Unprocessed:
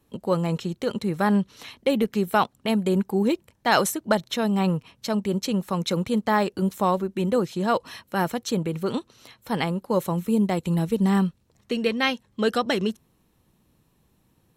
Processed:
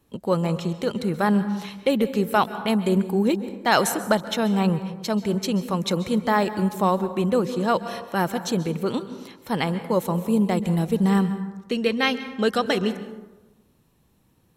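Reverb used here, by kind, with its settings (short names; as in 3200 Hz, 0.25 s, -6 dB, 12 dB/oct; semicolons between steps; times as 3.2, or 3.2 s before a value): plate-style reverb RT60 1.1 s, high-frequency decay 0.45×, pre-delay 0.12 s, DRR 12 dB; gain +1 dB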